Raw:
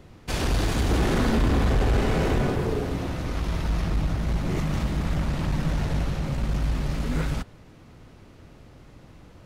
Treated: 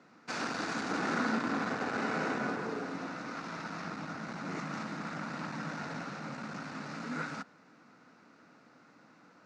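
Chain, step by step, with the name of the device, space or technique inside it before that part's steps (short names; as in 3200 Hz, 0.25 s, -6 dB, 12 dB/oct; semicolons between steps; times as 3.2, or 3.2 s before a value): television speaker (speaker cabinet 210–6700 Hz, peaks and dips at 380 Hz -9 dB, 570 Hz -4 dB, 1400 Hz +9 dB, 3200 Hz -10 dB); gain -5.5 dB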